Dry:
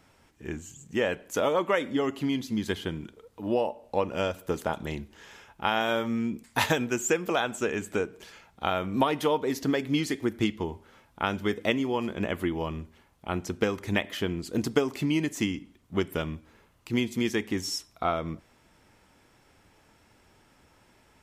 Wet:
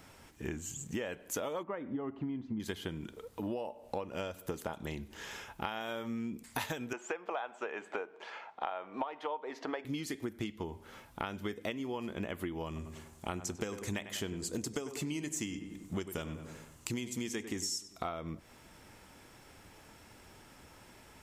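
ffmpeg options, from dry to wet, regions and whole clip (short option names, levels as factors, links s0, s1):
-filter_complex "[0:a]asettb=1/sr,asplit=3[s0][s1][s2];[s0]atrim=end=1.634[s3];[s1]atrim=start=1.63:end=2.6,asetpts=PTS-STARTPTS,afade=t=in:d=0.004:c=qsin,afade=t=out:st=0.966:d=0.004:c=qsin,lowpass=1100,equalizer=f=500:w=2.5:g=-6[s4];[s2]atrim=start=2.596[s5];[s3][s4]acrossfade=d=0.004:c1=hsin:c2=qsin[s6];[s6][s5]acrossfade=d=0.004:c1=qsin:c2=hsin,asettb=1/sr,asplit=3[s7][s8][s9];[s7]atrim=end=6.934[s10];[s8]atrim=start=6.93:end=9.85,asetpts=PTS-STARTPTS,afade=t=in:d=0.004:c=qsin,afade=t=out:st=2.916:d=0.004:c=qsin,highpass=490,lowpass=2700,equalizer=f=820:w=1.3:g=8[s11];[s9]atrim=start=9.846[s12];[s10][s11]acrossfade=d=0.004:c1=hsin:c2=qsin[s13];[s13][s12]acrossfade=d=0.004:c1=qsin:c2=hsin,asettb=1/sr,asplit=3[s14][s15][s16];[s14]atrim=end=12.664[s17];[s15]atrim=start=12.66:end=18.09,asetpts=PTS-STARTPTS,afade=t=in:d=0.004:c=qsin,afade=t=out:st=5.426:d=0.004:c=qsin,equalizer=f=7400:t=o:w=0.83:g=11,asplit=2[s18][s19];[s19]adelay=97,lowpass=f=2100:p=1,volume=0.251,asplit=2[s20][s21];[s21]adelay=97,lowpass=f=2100:p=1,volume=0.51,asplit=2[s22][s23];[s23]adelay=97,lowpass=f=2100:p=1,volume=0.51,asplit=2[s24][s25];[s25]adelay=97,lowpass=f=2100:p=1,volume=0.51,asplit=2[s26][s27];[s27]adelay=97,lowpass=f=2100:p=1,volume=0.51[s28];[s18][s20][s22][s24][s26][s28]amix=inputs=6:normalize=0,atrim=end_sample=239463[s29];[s16]atrim=start=18.086[s30];[s17][s29]acrossfade=d=0.004:c1=hsin:c2=qsin[s31];[s31][s30]acrossfade=d=0.004:c1=qsin:c2=hsin,highshelf=f=7700:g=5.5,acompressor=threshold=0.0112:ratio=8,volume=1.58"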